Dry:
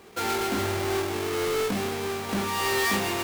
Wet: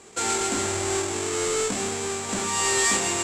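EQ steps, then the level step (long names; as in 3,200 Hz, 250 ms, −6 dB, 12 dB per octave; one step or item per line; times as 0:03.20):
low-pass with resonance 7,600 Hz, resonance Q 8.8
mains-hum notches 50/100/150/200 Hz
0.0 dB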